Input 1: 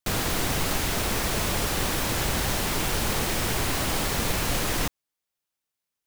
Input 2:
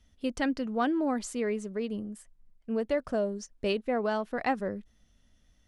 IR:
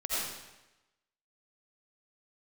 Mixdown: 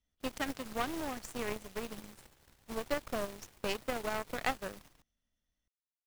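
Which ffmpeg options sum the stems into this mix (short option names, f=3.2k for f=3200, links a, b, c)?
-filter_complex "[0:a]lowshelf=f=210:g=6,volume=-19.5dB,asplit=2[a][b];[b]volume=-5.5dB[c];[1:a]acompressor=threshold=-30dB:ratio=3,volume=0.5dB,asplit=2[d][e];[e]apad=whole_len=267271[f];[a][f]sidechaingate=range=-33dB:threshold=-53dB:ratio=16:detection=peak[g];[c]aecho=0:1:141:1[h];[g][d][h]amix=inputs=3:normalize=0,lowshelf=f=260:g=-5,aeval=exprs='0.158*(cos(1*acos(clip(val(0)/0.158,-1,1)))-cos(1*PI/2))+0.0282*(cos(5*acos(clip(val(0)/0.158,-1,1)))-cos(5*PI/2))+0.0141*(cos(6*acos(clip(val(0)/0.158,-1,1)))-cos(6*PI/2))+0.0398*(cos(7*acos(clip(val(0)/0.158,-1,1)))-cos(7*PI/2))':c=same"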